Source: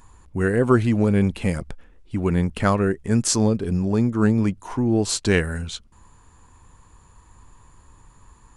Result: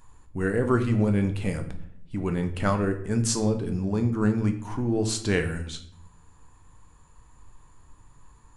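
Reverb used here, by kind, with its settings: shoebox room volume 120 m³, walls mixed, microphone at 0.46 m; gain -6 dB

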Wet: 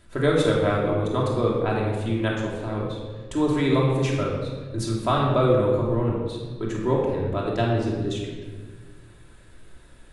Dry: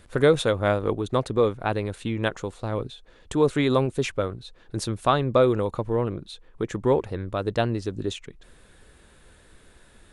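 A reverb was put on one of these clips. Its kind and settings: shoebox room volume 1400 m³, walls mixed, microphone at 2.9 m; gain -5 dB

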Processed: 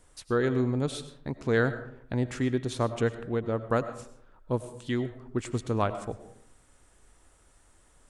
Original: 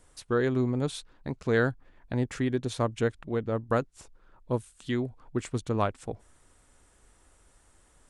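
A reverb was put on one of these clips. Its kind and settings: digital reverb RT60 0.7 s, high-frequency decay 0.5×, pre-delay 60 ms, DRR 11.5 dB

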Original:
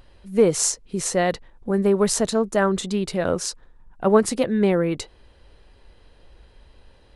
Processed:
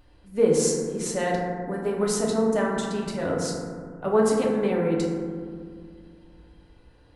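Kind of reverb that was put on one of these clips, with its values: FDN reverb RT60 2 s, low-frequency decay 1.45×, high-frequency decay 0.3×, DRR -3 dB; gain -8 dB

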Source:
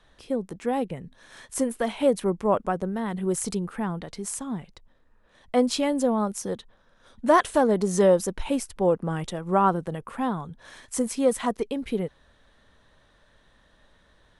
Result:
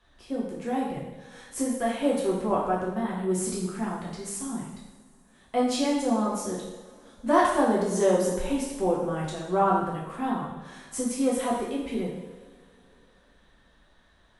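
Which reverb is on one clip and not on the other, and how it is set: two-slope reverb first 0.9 s, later 3.5 s, from -21 dB, DRR -5.5 dB; gain -7.5 dB

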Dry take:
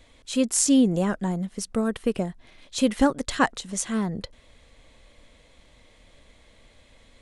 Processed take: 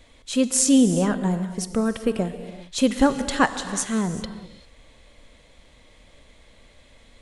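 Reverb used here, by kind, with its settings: non-linear reverb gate 0.42 s flat, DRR 10 dB; gain +2 dB

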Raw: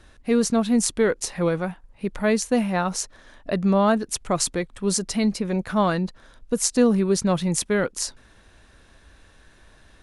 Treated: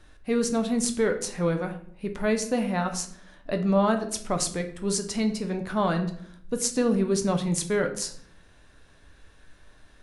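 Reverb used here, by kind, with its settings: shoebox room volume 92 m³, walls mixed, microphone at 0.42 m; gain -4.5 dB

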